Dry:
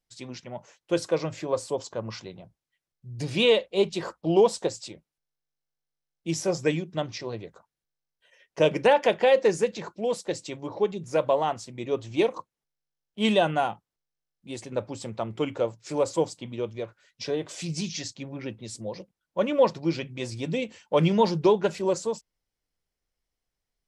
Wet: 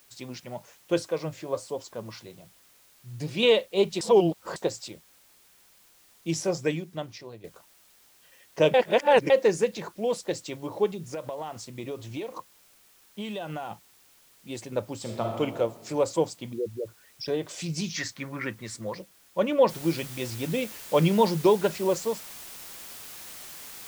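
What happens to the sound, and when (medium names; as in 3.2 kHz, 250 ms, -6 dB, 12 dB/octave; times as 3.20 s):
1.02–3.43 s: flange 1.2 Hz, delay 2.5 ms, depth 6.3 ms, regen +66%
4.01–4.56 s: reverse
6.33–7.44 s: fade out, to -12 dB
8.74–9.30 s: reverse
10.91–13.71 s: compression 16:1, threshold -30 dBFS
15.00–15.40 s: reverb throw, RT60 1.5 s, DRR 0.5 dB
16.53–17.28 s: resonances exaggerated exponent 3
17.96–18.95 s: high-order bell 1.5 kHz +14 dB 1.3 oct
19.69 s: noise floor step -59 dB -43 dB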